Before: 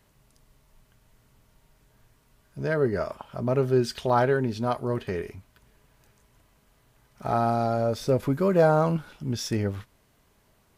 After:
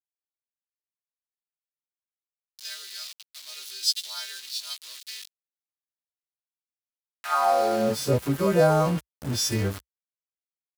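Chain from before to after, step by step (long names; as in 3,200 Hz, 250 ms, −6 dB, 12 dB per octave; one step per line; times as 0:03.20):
every partial snapped to a pitch grid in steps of 2 semitones
centre clipping without the shift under −32 dBFS
high-pass filter sweep 4,000 Hz → 60 Hz, 0:07.01–0:08.21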